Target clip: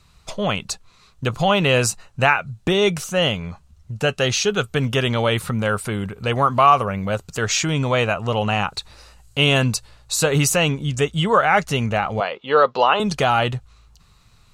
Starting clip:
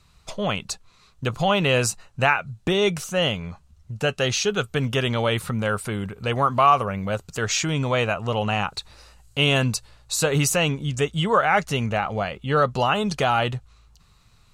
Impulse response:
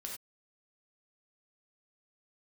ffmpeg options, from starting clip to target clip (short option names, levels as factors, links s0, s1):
-filter_complex "[0:a]asettb=1/sr,asplit=3[s0][s1][s2];[s0]atrim=end=12.204[s3];[s1]atrim=start=12.2:end=13,asetpts=PTS-STARTPTS,afade=t=in:d=0.004:c=qsin,afade=t=out:st=0.796:d=0.004:c=qsin,highpass=360,equalizer=f=480:t=q:w=4:g=6,equalizer=f=1000:t=q:w=4:g=6,equalizer=f=3800:t=q:w=4:g=3,lowpass=f=5000:w=0.5412,lowpass=f=5000:w=1.3066[s4];[s2]atrim=start=12.996[s5];[s3][s4]acrossfade=d=0.004:c1=hsin:c2=qsin[s6];[s6][s5]acrossfade=d=0.004:c1=qsin:c2=hsin,volume=1.41"